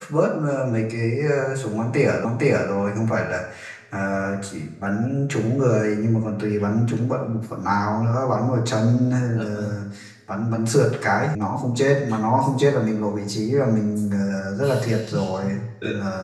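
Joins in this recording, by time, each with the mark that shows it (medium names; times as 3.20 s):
2.25 s: repeat of the last 0.46 s
11.35 s: sound stops dead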